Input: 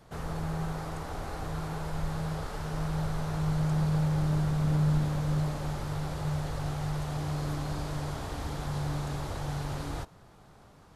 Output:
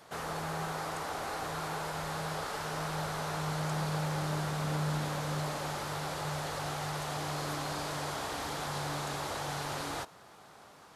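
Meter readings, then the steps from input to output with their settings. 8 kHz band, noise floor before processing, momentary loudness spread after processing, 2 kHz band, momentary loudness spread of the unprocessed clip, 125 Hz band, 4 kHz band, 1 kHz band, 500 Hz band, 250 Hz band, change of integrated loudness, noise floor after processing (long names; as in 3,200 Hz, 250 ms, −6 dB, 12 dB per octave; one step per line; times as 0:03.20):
+5.5 dB, −56 dBFS, 4 LU, +5.0 dB, 9 LU, −8.0 dB, +5.5 dB, +3.5 dB, +1.0 dB, −6.5 dB, −3.5 dB, −55 dBFS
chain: high-pass filter 690 Hz 6 dB per octave
in parallel at −10.5 dB: soft clipping −40 dBFS, distortion −12 dB
on the sum: level +4 dB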